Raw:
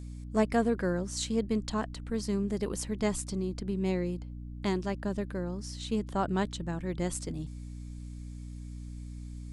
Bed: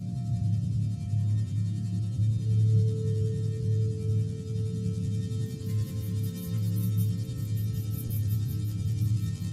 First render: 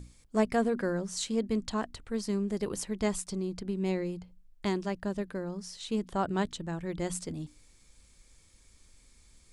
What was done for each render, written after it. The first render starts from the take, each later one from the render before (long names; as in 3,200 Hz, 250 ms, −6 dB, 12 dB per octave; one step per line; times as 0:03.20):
mains-hum notches 60/120/180/240/300 Hz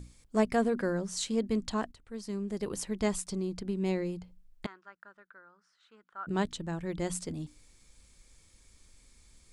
0:01.92–0:02.90: fade in, from −13.5 dB
0:04.66–0:06.27: resonant band-pass 1,400 Hz, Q 6.8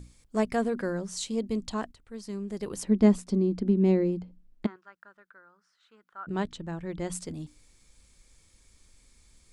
0:01.17–0:01.73: parametric band 1,600 Hz −8.5 dB 0.61 octaves
0:02.83–0:04.76: drawn EQ curve 150 Hz 0 dB, 210 Hz +13 dB, 920 Hz +1 dB, 4,800 Hz −4 dB, 8,800 Hz −9 dB
0:06.20–0:07.12: low-pass filter 3,700 Hz 6 dB per octave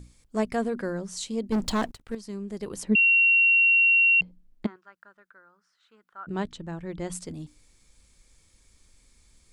0:01.52–0:02.15: leveller curve on the samples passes 3
0:02.95–0:04.21: beep over 2,740 Hz −16 dBFS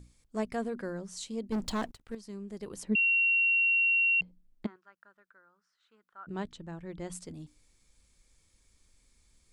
level −6.5 dB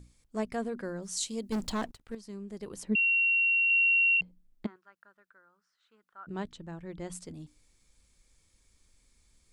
0:01.02–0:01.67: high-shelf EQ 3,300 Hz +11 dB
0:03.70–0:04.17: high shelf with overshoot 2,900 Hz +9 dB, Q 3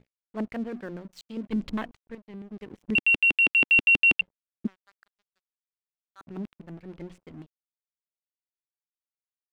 auto-filter low-pass square 6.2 Hz 280–2,600 Hz
dead-zone distortion −50.5 dBFS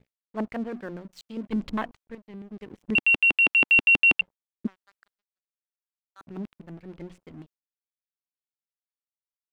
noise gate with hold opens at −56 dBFS
dynamic equaliser 950 Hz, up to +6 dB, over −42 dBFS, Q 0.86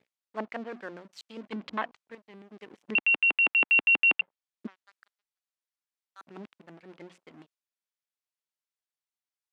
treble cut that deepens with the level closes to 2,300 Hz, closed at −21 dBFS
meter weighting curve A